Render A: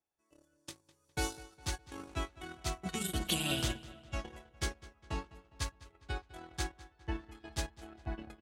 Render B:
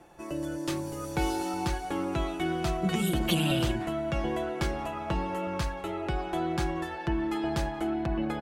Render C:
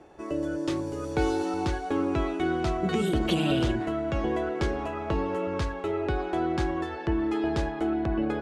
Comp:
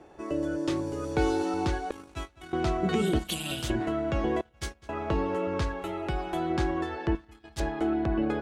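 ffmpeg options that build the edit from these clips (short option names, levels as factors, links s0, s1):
-filter_complex "[0:a]asplit=4[s0][s1][s2][s3];[2:a]asplit=6[s4][s5][s6][s7][s8][s9];[s4]atrim=end=1.912[s10];[s0]atrim=start=1.908:end=2.532[s11];[s5]atrim=start=2.528:end=3.192[s12];[s1]atrim=start=3.188:end=3.702[s13];[s6]atrim=start=3.698:end=4.412[s14];[s2]atrim=start=4.408:end=4.892[s15];[s7]atrim=start=4.888:end=5.822[s16];[1:a]atrim=start=5.818:end=6.502[s17];[s8]atrim=start=6.498:end=7.152[s18];[s3]atrim=start=7.148:end=7.602[s19];[s9]atrim=start=7.598[s20];[s10][s11]acrossfade=d=0.004:c1=hsin:c2=hsin[s21];[s21][s12]acrossfade=d=0.004:c1=hsin:c2=hsin[s22];[s22][s13]acrossfade=d=0.004:c1=hsin:c2=hsin[s23];[s23][s14]acrossfade=d=0.004:c1=hsin:c2=hsin[s24];[s24][s15]acrossfade=d=0.004:c1=hsin:c2=hsin[s25];[s25][s16]acrossfade=d=0.004:c1=hsin:c2=hsin[s26];[s26][s17]acrossfade=d=0.004:c1=hsin:c2=hsin[s27];[s27][s18]acrossfade=d=0.004:c1=hsin:c2=hsin[s28];[s28][s19]acrossfade=d=0.004:c1=hsin:c2=hsin[s29];[s29][s20]acrossfade=d=0.004:c1=hsin:c2=hsin"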